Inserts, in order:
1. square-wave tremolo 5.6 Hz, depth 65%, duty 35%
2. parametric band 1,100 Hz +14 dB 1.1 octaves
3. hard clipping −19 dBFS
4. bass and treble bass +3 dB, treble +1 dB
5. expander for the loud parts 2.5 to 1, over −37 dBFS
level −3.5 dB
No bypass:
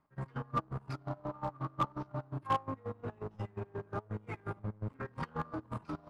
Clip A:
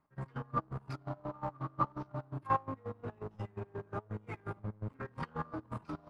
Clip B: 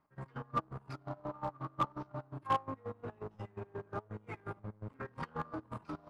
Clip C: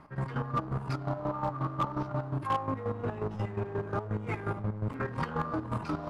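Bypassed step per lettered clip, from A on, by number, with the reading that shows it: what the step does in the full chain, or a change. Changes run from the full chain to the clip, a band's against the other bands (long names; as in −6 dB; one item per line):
3, distortion level −24 dB
4, 125 Hz band −4.0 dB
5, 4 kHz band −3.5 dB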